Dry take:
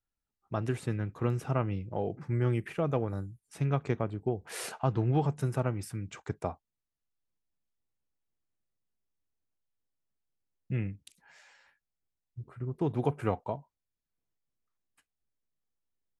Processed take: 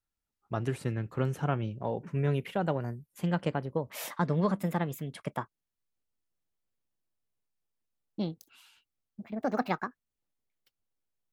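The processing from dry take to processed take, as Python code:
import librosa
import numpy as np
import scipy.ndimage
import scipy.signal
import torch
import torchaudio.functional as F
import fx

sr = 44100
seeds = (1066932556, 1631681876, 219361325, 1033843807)

y = fx.speed_glide(x, sr, from_pct=99, to_pct=187)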